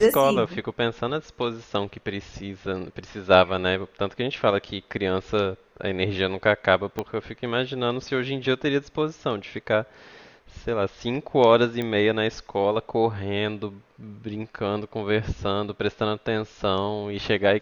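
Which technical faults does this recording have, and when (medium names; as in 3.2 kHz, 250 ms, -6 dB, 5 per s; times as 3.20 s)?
6.99 s: pop -14 dBFS
11.82 s: pop -16 dBFS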